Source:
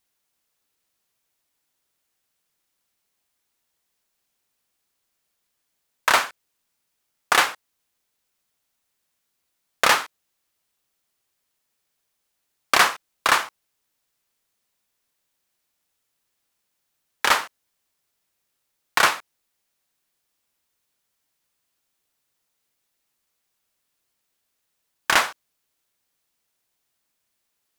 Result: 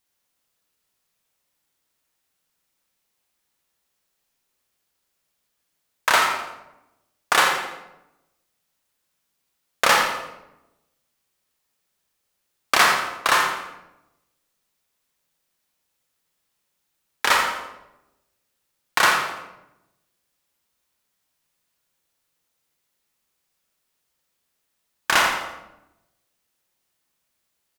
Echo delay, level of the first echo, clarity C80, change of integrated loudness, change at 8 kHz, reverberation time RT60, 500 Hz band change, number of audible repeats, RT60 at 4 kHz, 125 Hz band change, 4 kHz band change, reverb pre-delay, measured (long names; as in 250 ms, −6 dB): 84 ms, −9.5 dB, 5.0 dB, +0.5 dB, +0.5 dB, 0.95 s, +2.0 dB, 1, 0.65 s, +3.0 dB, +1.0 dB, 27 ms